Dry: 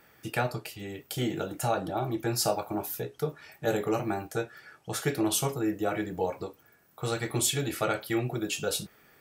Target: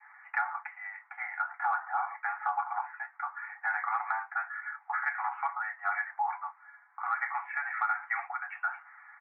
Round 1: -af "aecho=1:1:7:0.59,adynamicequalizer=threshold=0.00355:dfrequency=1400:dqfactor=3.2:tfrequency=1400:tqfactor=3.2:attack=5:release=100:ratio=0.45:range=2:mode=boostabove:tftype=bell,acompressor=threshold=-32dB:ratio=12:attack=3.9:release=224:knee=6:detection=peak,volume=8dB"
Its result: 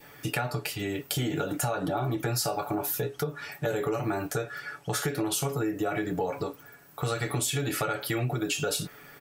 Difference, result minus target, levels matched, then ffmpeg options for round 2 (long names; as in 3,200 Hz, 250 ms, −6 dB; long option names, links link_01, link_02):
1,000 Hz band −7.5 dB
-af "aecho=1:1:7:0.59,adynamicequalizer=threshold=0.00355:dfrequency=1400:dqfactor=3.2:tfrequency=1400:tqfactor=3.2:attack=5:release=100:ratio=0.45:range=2:mode=boostabove:tftype=bell,asuperpass=centerf=1300:order=20:qfactor=0.92,acompressor=threshold=-32dB:ratio=12:attack=3.9:release=224:knee=6:detection=peak,volume=8dB"